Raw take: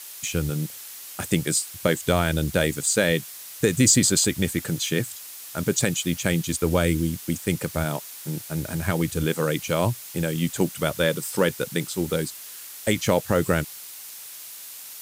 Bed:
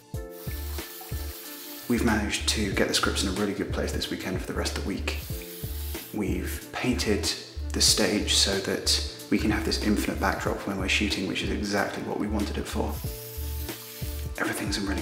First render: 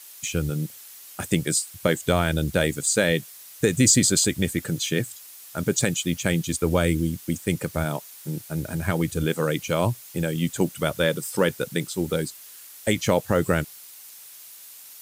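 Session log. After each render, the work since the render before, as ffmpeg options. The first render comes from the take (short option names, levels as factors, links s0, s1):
-af "afftdn=nr=6:nf=-40"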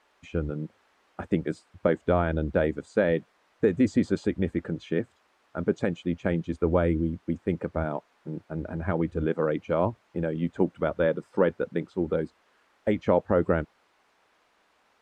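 -af "lowpass=1200,equalizer=f=130:t=o:w=0.48:g=-15"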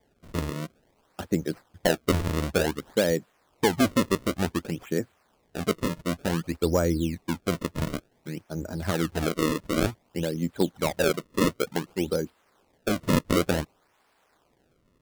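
-af "acrusher=samples=32:mix=1:aa=0.000001:lfo=1:lforange=51.2:lforate=0.55,asoftclip=type=hard:threshold=0.266"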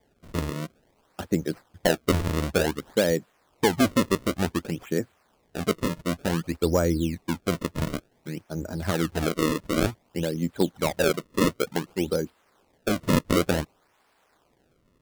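-af "volume=1.12"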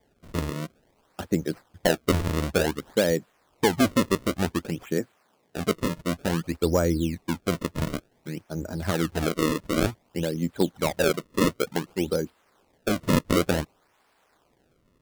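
-filter_complex "[0:a]asettb=1/sr,asplit=3[s0][s1][s2];[s0]atrim=end=4.984[s3];[s1]atrim=start=4.98:end=5.57,asetpts=PTS-STARTPTS,afade=t=in:d=0.004:c=qsin,afade=t=out:st=0.586:d=0.004:c=qsin,highpass=150[s4];[s2]atrim=start=5.566[s5];[s3][s4]acrossfade=d=0.004:c1=hsin:c2=qsin[s6];[s6][s5]acrossfade=d=0.004:c1=qsin:c2=hsin"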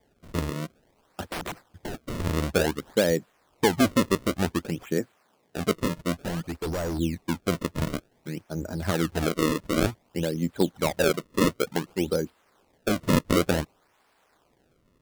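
-filter_complex "[0:a]asettb=1/sr,asplit=3[s0][s1][s2];[s0]atrim=end=1.284[s3];[s1]atrim=start=1.28:end=2.2,asetpts=PTS-STARTPTS,afade=t=in:d=0.004:c=qsin,afade=t=out:st=0.916:d=0.004:c=qsin,aeval=exprs='(mod(23.7*val(0)+1,2)-1)/23.7':c=same[s4];[s2]atrim=start=2.196[s5];[s3][s4]acrossfade=d=0.004:c1=hsin:c2=qsin[s6];[s6][s5]acrossfade=d=0.004:c1=qsin:c2=hsin,asettb=1/sr,asplit=3[s7][s8][s9];[s7]atrim=end=6.124[s10];[s8]atrim=start=6.12:end=6.99,asetpts=PTS-STARTPTS,afade=t=in:d=0.004:c=qsin,afade=t=out:st=0.866:d=0.004:c=qsin,volume=22.4,asoftclip=hard,volume=0.0447[s11];[s9]atrim=start=6.986[s12];[s10][s11]acrossfade=d=0.004:c1=hsin:c2=qsin[s13];[s13][s12]acrossfade=d=0.004:c1=qsin:c2=hsin"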